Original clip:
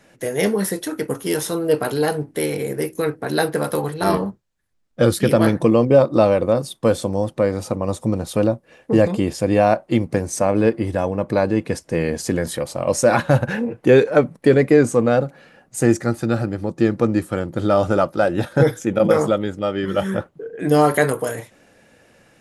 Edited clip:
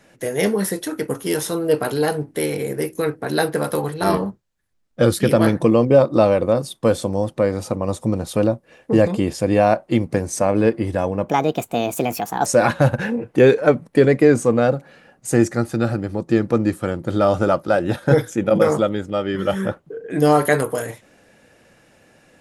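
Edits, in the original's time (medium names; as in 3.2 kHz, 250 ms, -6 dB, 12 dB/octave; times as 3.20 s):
11.29–12.95 s: speed 142%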